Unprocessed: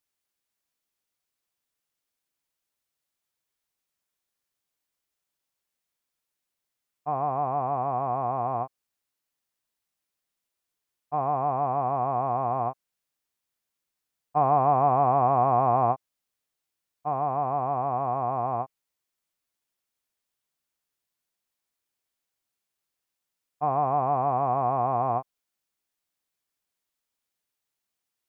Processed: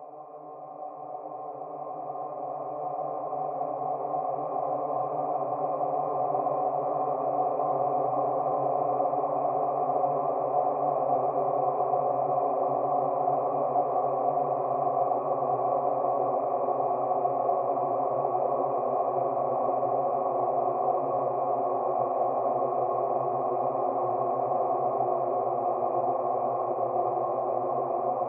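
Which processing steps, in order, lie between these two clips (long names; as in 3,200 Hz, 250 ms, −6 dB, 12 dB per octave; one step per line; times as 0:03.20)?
loudspeaker in its box 230–2,300 Hz, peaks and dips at 230 Hz −4 dB, 360 Hz +9 dB, 540 Hz +10 dB, 920 Hz −8 dB, 1,500 Hz −8 dB
extreme stretch with random phases 16×, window 1.00 s, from 0:16.77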